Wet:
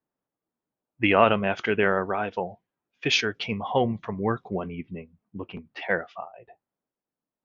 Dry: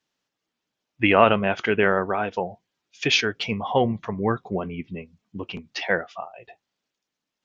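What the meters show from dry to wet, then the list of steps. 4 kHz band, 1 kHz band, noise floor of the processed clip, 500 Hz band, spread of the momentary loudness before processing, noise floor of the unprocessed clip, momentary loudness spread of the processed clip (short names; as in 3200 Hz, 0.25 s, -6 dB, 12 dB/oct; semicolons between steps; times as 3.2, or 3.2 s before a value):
-3.0 dB, -2.5 dB, under -85 dBFS, -2.5 dB, 19 LU, -85 dBFS, 19 LU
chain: low-pass opened by the level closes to 1000 Hz, open at -18.5 dBFS; gain -2.5 dB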